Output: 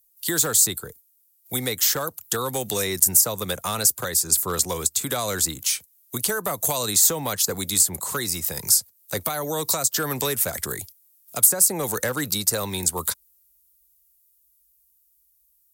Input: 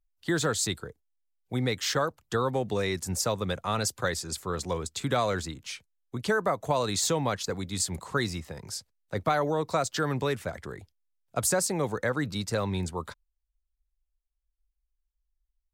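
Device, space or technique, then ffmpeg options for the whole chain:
FM broadcast chain: -filter_complex "[0:a]highpass=53,dynaudnorm=f=720:g=9:m=1.58,acrossover=split=300|1600[s0][s1][s2];[s0]acompressor=threshold=0.02:ratio=4[s3];[s1]acompressor=threshold=0.0447:ratio=4[s4];[s2]acompressor=threshold=0.00708:ratio=4[s5];[s3][s4][s5]amix=inputs=3:normalize=0,aemphasis=mode=production:type=75fm,alimiter=limit=0.112:level=0:latency=1:release=455,asoftclip=type=hard:threshold=0.075,lowpass=f=15000:w=0.5412,lowpass=f=15000:w=1.3066,aemphasis=mode=production:type=75fm,volume=1.5"

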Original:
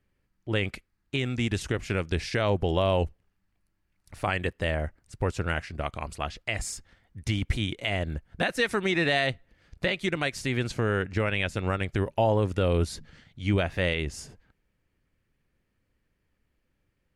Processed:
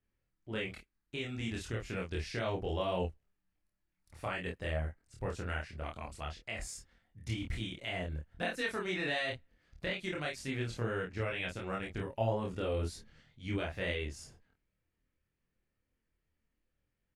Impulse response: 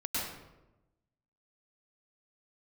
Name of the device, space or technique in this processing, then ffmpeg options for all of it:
double-tracked vocal: -filter_complex "[0:a]asplit=2[s0][s1];[s1]adelay=27,volume=0.75[s2];[s0][s2]amix=inputs=2:normalize=0,flanger=delay=22.5:depth=3:speed=2,volume=0.398"

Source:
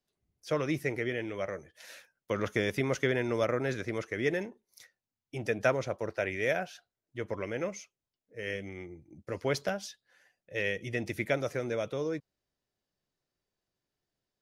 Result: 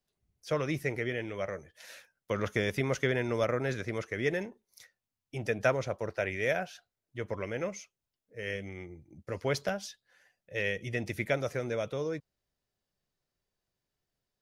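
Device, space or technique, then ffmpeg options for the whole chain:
low shelf boost with a cut just above: -af "lowshelf=f=79:g=6,equalizer=f=310:t=o:w=0.53:g=-3.5"

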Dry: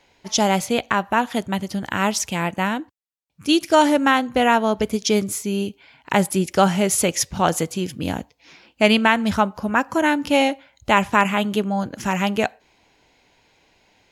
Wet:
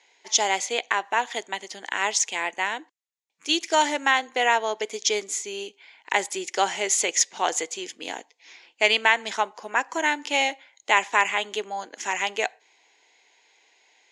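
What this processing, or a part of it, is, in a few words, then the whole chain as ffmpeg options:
phone speaker on a table: -af "highpass=f=410:w=0.5412,highpass=f=410:w=1.3066,equalizer=f=570:t=q:w=4:g=-8,equalizer=f=1300:t=q:w=4:g=-7,equalizer=f=2000:t=q:w=4:g=6,equalizer=f=3500:t=q:w=4:g=3,equalizer=f=6800:t=q:w=4:g=8,lowpass=f=8300:w=0.5412,lowpass=f=8300:w=1.3066,volume=0.75"

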